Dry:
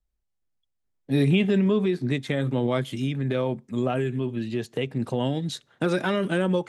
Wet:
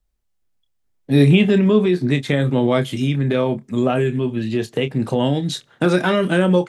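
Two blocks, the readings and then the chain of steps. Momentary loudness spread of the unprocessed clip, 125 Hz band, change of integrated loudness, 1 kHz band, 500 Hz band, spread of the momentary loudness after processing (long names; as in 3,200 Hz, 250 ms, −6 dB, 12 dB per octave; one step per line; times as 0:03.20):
8 LU, +7.5 dB, +7.5 dB, +7.5 dB, +7.5 dB, 9 LU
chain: double-tracking delay 28 ms −10 dB
level +7 dB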